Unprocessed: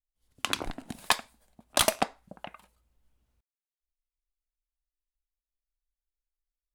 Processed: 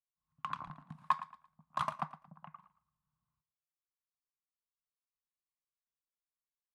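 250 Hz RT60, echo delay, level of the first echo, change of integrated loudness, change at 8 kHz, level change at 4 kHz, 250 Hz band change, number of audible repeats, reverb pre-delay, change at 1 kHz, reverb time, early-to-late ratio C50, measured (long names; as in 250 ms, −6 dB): no reverb audible, 113 ms, −15.0 dB, −10.5 dB, −32.5 dB, −24.0 dB, −13.5 dB, 2, no reverb audible, −3.5 dB, no reverb audible, no reverb audible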